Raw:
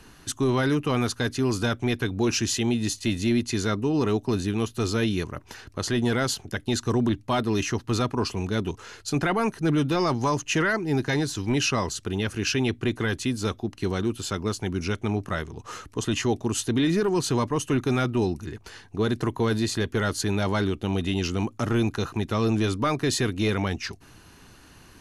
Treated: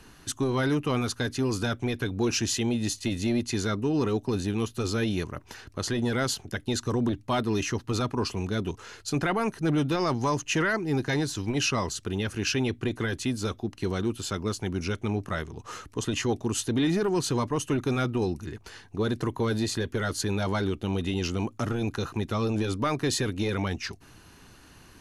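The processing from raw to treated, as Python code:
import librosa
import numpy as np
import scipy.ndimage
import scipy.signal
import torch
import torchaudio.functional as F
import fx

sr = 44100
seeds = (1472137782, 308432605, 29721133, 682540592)

y = fx.transformer_sat(x, sr, knee_hz=150.0)
y = y * 10.0 ** (-1.5 / 20.0)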